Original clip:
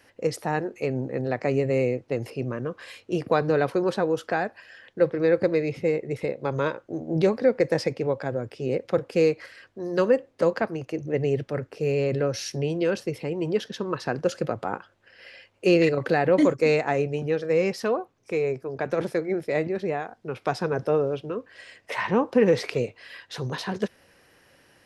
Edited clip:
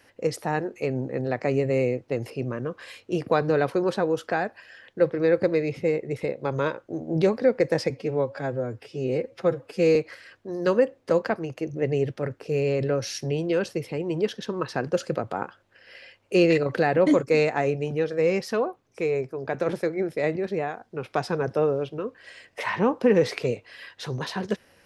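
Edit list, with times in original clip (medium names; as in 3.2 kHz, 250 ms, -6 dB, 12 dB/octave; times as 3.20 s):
7.90–9.27 s: stretch 1.5×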